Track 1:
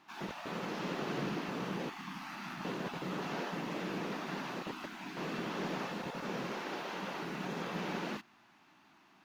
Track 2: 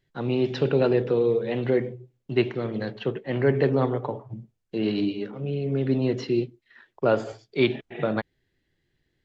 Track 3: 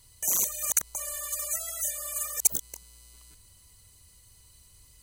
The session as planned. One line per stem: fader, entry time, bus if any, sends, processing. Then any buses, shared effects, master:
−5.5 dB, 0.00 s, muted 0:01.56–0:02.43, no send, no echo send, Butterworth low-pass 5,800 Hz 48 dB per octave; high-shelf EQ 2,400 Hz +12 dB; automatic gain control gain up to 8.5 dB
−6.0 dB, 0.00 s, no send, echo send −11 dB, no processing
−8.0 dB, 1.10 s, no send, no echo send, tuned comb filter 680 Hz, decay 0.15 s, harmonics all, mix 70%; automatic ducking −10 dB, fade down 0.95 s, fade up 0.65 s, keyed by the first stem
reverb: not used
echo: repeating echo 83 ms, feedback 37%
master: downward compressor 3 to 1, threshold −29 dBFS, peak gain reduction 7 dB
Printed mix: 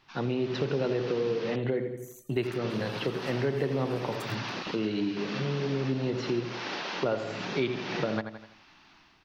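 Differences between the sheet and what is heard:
stem 2 −6.0 dB → +3.0 dB
stem 3: entry 1.10 s → 1.75 s

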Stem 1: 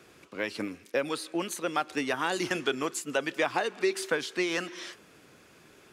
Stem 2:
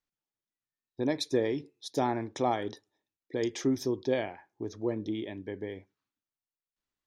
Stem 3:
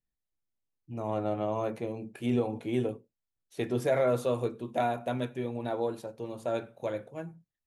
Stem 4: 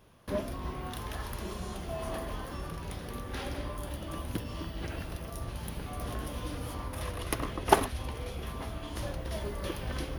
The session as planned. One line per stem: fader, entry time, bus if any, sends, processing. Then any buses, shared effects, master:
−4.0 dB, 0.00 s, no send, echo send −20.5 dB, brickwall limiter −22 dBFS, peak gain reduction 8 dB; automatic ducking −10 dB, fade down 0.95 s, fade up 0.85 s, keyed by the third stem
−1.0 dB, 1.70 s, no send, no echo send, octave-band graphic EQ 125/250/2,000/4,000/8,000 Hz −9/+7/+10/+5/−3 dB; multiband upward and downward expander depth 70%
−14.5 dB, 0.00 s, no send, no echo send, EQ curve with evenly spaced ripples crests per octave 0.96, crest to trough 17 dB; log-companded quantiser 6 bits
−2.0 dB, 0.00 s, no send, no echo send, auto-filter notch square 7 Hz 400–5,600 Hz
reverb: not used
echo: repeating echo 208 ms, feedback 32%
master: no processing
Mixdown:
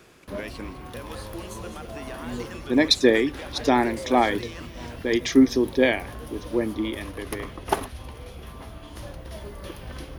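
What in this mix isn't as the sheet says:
stem 1 −4.0 dB → +3.0 dB
stem 2 −1.0 dB → +5.0 dB
stem 4: missing auto-filter notch square 7 Hz 400–5,600 Hz

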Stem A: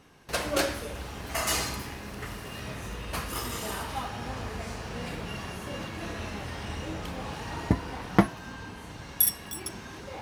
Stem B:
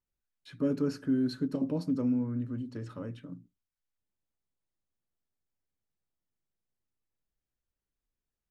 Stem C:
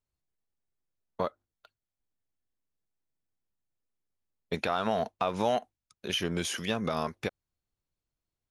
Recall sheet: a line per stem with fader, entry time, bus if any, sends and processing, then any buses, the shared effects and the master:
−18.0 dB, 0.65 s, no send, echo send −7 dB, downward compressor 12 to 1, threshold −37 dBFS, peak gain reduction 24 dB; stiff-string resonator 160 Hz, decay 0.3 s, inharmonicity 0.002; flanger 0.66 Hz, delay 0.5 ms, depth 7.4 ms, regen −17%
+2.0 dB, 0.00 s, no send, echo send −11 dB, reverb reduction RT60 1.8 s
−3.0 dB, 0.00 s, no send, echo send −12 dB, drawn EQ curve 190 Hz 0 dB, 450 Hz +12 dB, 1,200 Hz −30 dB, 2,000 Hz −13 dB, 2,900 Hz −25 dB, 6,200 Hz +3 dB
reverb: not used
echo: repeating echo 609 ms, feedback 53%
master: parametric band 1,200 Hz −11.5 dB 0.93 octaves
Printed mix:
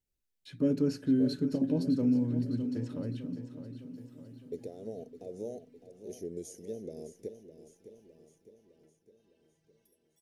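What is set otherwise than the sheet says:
stem B: missing reverb reduction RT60 1.8 s
stem C −3.0 dB → −14.0 dB

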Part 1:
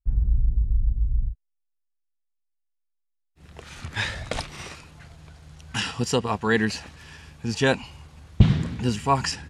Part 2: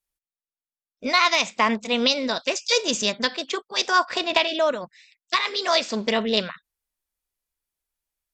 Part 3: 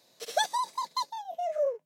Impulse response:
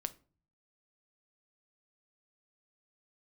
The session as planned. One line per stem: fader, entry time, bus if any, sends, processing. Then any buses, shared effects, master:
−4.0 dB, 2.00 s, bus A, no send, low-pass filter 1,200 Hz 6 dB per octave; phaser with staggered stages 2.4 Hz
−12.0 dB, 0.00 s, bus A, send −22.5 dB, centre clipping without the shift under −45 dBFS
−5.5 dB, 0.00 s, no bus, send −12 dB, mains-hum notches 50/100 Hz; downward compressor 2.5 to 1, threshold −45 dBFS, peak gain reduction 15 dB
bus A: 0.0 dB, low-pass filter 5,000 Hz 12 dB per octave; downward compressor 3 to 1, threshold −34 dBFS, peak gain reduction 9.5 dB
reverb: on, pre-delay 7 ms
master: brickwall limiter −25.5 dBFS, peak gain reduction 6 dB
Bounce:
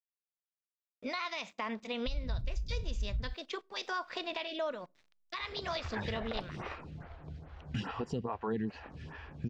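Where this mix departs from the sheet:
stem 1 −4.0 dB → +4.5 dB
stem 3: muted
reverb return +7.0 dB

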